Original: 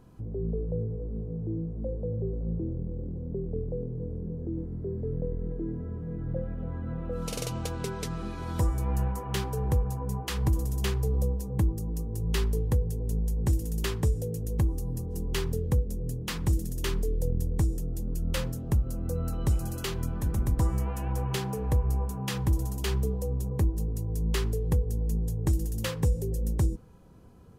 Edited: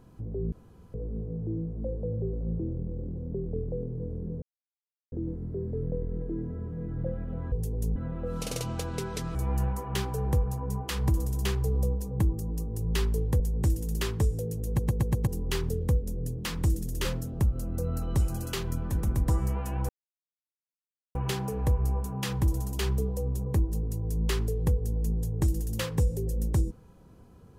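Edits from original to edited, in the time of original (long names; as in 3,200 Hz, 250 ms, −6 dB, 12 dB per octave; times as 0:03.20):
0:00.52–0:00.94: fill with room tone
0:04.42: splice in silence 0.70 s
0:08.21–0:08.74: remove
0:12.79–0:13.23: move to 0:06.82
0:14.50: stutter in place 0.12 s, 5 plays
0:16.88–0:18.36: remove
0:21.20: splice in silence 1.26 s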